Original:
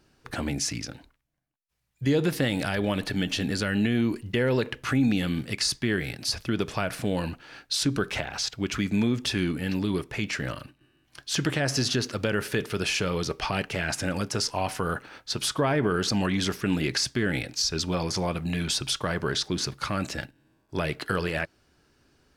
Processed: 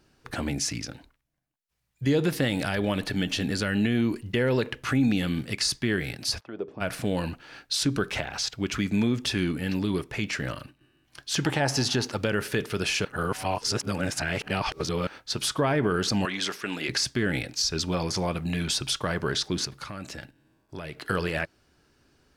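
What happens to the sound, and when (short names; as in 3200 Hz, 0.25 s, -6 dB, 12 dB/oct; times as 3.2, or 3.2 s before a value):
6.39–6.8 band-pass 1100 Hz -> 250 Hz, Q 2.1
11.42–12.17 bell 840 Hz +14 dB 0.3 oct
13.05–15.07 reverse
16.25–16.89 weighting filter A
19.65–21.05 compressor 2.5:1, threshold -37 dBFS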